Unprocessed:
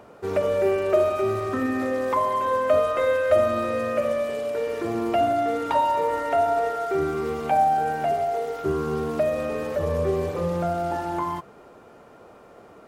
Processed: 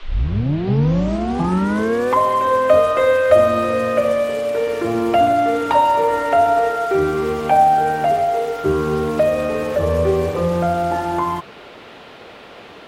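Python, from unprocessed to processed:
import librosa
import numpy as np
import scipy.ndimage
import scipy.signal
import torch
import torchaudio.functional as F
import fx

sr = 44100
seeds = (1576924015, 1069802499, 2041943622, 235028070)

y = fx.tape_start_head(x, sr, length_s=2.17)
y = fx.dmg_noise_band(y, sr, seeds[0], low_hz=250.0, high_hz=3500.0, level_db=-51.0)
y = F.gain(torch.from_numpy(y), 7.0).numpy()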